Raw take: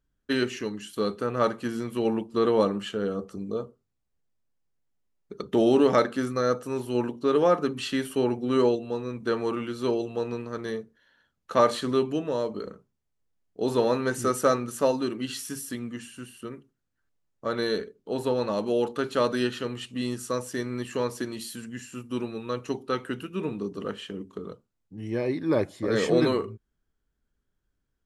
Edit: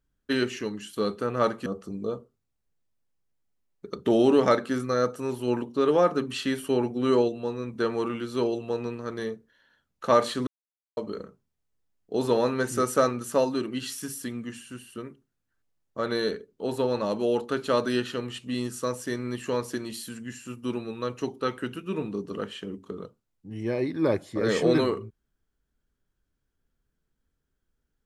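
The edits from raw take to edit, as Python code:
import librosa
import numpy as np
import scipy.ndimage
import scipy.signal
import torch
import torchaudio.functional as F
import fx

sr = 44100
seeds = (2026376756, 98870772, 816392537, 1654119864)

y = fx.edit(x, sr, fx.cut(start_s=1.66, length_s=1.47),
    fx.silence(start_s=11.94, length_s=0.5), tone=tone)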